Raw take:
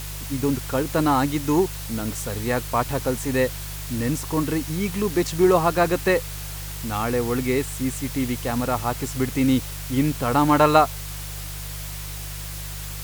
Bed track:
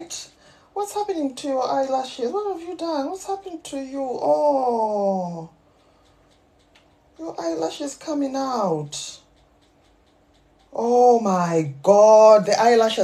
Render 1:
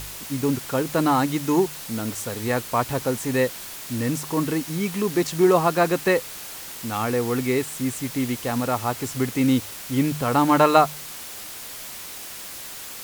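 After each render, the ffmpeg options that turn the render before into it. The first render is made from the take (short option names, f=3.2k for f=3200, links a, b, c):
-af "bandreject=f=50:t=h:w=4,bandreject=f=100:t=h:w=4,bandreject=f=150:t=h:w=4"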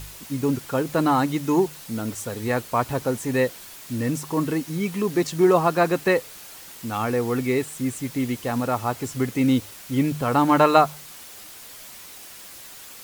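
-af "afftdn=nr=6:nf=-37"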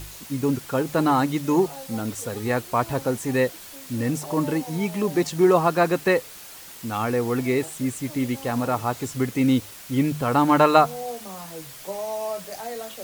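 -filter_complex "[1:a]volume=-18.5dB[a];[0:a][a]amix=inputs=2:normalize=0"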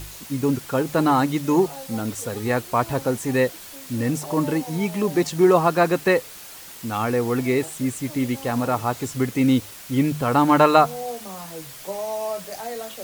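-af "volume=1.5dB,alimiter=limit=-2dB:level=0:latency=1"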